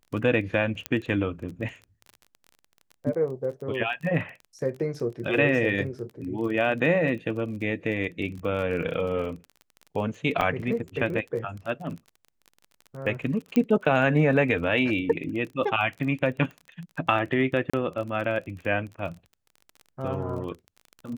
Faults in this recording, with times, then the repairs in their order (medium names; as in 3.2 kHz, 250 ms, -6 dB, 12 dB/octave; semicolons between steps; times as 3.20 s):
crackle 24 per s -35 dBFS
0.86 s: pop -12 dBFS
10.41 s: dropout 3.4 ms
13.56 s: pop -14 dBFS
17.70–17.73 s: dropout 35 ms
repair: de-click; interpolate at 10.41 s, 3.4 ms; interpolate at 17.70 s, 35 ms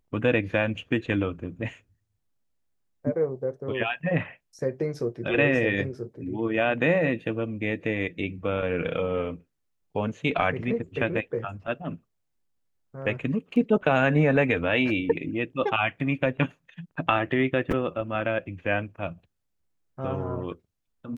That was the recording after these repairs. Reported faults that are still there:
13.56 s: pop